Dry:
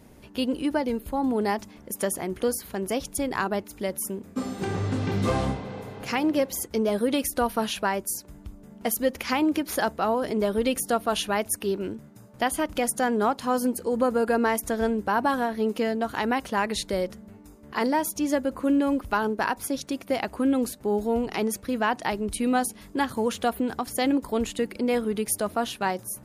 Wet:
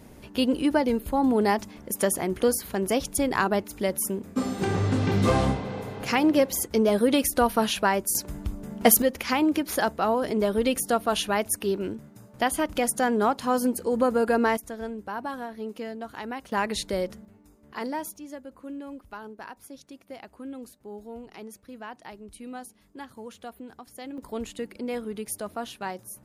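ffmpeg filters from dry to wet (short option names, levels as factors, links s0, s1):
-af "asetnsamples=n=441:p=0,asendcmd='8.15 volume volume 9.5dB;9.02 volume volume 0.5dB;14.57 volume volume -9.5dB;16.52 volume volume -1dB;17.25 volume volume -7.5dB;18.16 volume volume -15.5dB;24.18 volume volume -7dB',volume=1.41"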